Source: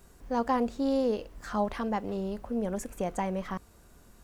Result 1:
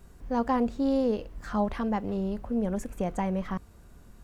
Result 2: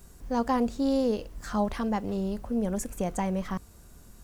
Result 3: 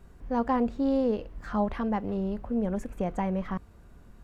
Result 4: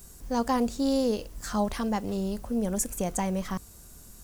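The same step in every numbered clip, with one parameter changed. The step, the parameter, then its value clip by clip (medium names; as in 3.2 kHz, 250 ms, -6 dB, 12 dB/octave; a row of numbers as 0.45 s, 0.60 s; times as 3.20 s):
tone controls, treble: -4 dB, +6 dB, -12 dB, +15 dB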